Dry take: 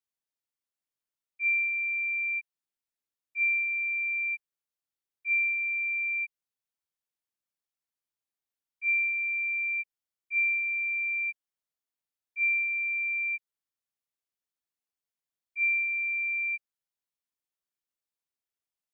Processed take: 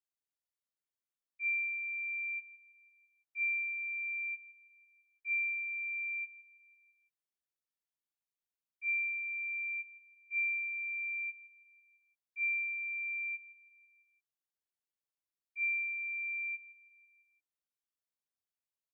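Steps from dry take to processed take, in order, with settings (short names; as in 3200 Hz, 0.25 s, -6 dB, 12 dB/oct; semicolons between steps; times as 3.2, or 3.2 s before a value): feedback echo 0.166 s, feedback 53%, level -16 dB; gain -7 dB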